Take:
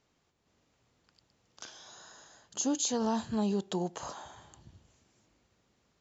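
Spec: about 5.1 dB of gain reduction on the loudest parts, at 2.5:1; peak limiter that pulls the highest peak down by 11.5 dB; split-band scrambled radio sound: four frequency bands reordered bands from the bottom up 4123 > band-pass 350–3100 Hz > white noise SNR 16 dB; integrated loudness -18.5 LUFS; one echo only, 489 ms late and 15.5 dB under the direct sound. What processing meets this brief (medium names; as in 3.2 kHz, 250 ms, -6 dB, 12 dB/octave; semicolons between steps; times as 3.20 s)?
compression 2.5:1, threshold -34 dBFS; peak limiter -34 dBFS; delay 489 ms -15.5 dB; four frequency bands reordered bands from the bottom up 4123; band-pass 350–3100 Hz; white noise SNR 16 dB; trim +25.5 dB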